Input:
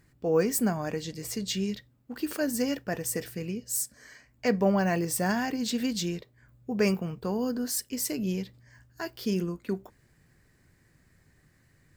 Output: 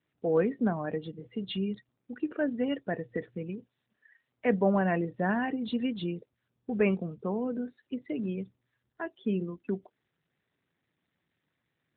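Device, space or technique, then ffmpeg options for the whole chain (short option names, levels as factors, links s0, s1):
mobile call with aggressive noise cancelling: -af "highpass=140,afftdn=nr=22:nf=-39" -ar 8000 -c:a libopencore_amrnb -b:a 12200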